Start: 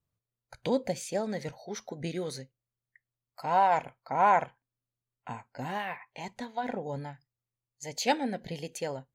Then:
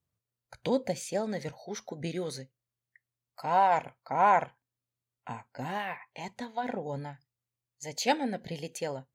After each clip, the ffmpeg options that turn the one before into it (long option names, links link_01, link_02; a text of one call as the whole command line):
ffmpeg -i in.wav -af "highpass=47" out.wav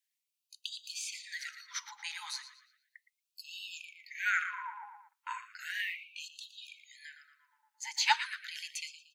ffmpeg -i in.wav -filter_complex "[0:a]acrossover=split=6600[link_01][link_02];[link_02]acompressor=threshold=-53dB:ratio=4:attack=1:release=60[link_03];[link_01][link_03]amix=inputs=2:normalize=0,asplit=2[link_04][link_05];[link_05]adelay=116,lowpass=frequency=3600:poles=1,volume=-9dB,asplit=2[link_06][link_07];[link_07]adelay=116,lowpass=frequency=3600:poles=1,volume=0.52,asplit=2[link_08][link_09];[link_09]adelay=116,lowpass=frequency=3600:poles=1,volume=0.52,asplit=2[link_10][link_11];[link_11]adelay=116,lowpass=frequency=3600:poles=1,volume=0.52,asplit=2[link_12][link_13];[link_13]adelay=116,lowpass=frequency=3600:poles=1,volume=0.52,asplit=2[link_14][link_15];[link_15]adelay=116,lowpass=frequency=3600:poles=1,volume=0.52[link_16];[link_06][link_08][link_10][link_12][link_14][link_16]amix=inputs=6:normalize=0[link_17];[link_04][link_17]amix=inputs=2:normalize=0,afftfilt=real='re*gte(b*sr/1024,780*pow(2600/780,0.5+0.5*sin(2*PI*0.35*pts/sr)))':imag='im*gte(b*sr/1024,780*pow(2600/780,0.5+0.5*sin(2*PI*0.35*pts/sr)))':win_size=1024:overlap=0.75,volume=5dB" out.wav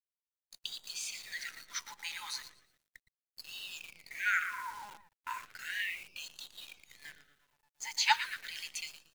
ffmpeg -i in.wav -af "acrusher=bits=9:dc=4:mix=0:aa=0.000001" out.wav